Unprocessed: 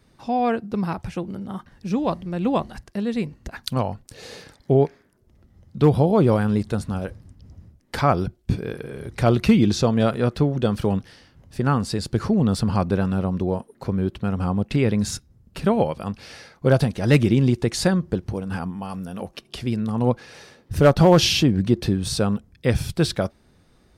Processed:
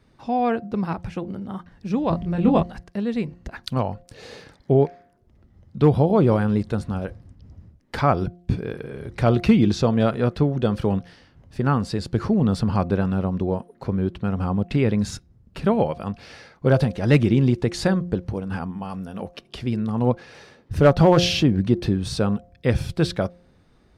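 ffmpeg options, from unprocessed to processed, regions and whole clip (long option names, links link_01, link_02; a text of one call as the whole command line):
ffmpeg -i in.wav -filter_complex "[0:a]asettb=1/sr,asplit=3[link_01][link_02][link_03];[link_01]atrim=end=2.104[link_04];[link_02]atrim=start=2.1:end=2.63,asetpts=PTS-STARTPTS,afade=type=in:duration=0.004:curve=qsin,afade=type=out:start_time=0.526:duration=0.004:curve=qsin,lowshelf=frequency=190:gain=10.5,asplit=2[link_05][link_06];[link_06]adelay=24,volume=-4.5dB[link_07];[link_05][link_07]amix=inputs=2:normalize=0,atrim=end_sample=23373[link_08];[link_03]atrim=start=2.626[link_09];[link_04][link_08]acrossfade=duration=0.004:curve1=hsin:curve2=qsin[link_10];[link_10][link_09]acrossfade=duration=0.004:curve1=qsin:curve2=hsin,highshelf=frequency=6500:gain=-12,bandreject=frequency=175.9:width_type=h:width=4,bandreject=frequency=351.8:width_type=h:width=4,bandreject=frequency=527.7:width_type=h:width=4,bandreject=frequency=703.6:width_type=h:width=4" out.wav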